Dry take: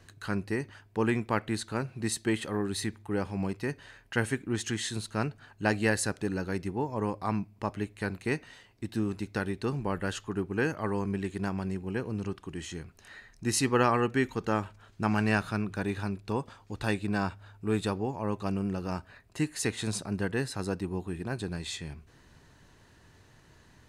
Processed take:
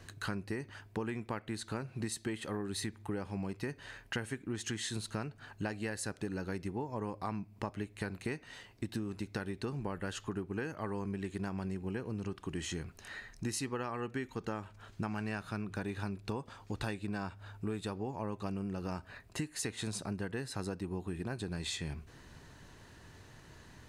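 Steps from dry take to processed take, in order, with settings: compression 12:1, threshold -37 dBFS, peak gain reduction 18 dB; trim +3 dB

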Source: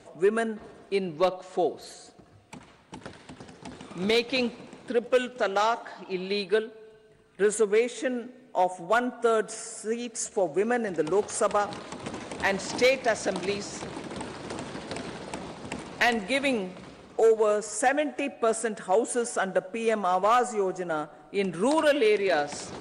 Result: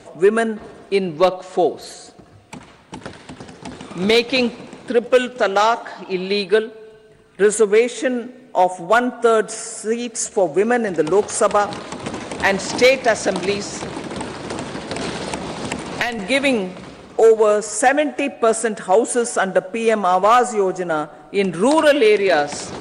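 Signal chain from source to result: 15.01–16.19 s: three bands compressed up and down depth 100%; trim +9 dB

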